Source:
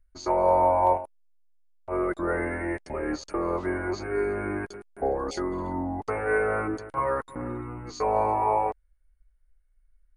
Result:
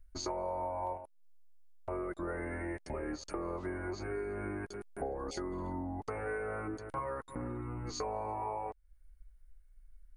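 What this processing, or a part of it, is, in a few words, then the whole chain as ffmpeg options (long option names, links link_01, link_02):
ASMR close-microphone chain: -af "lowshelf=frequency=200:gain=5.5,acompressor=threshold=-38dB:ratio=5,highshelf=frequency=6700:gain=4.5,volume=1dB"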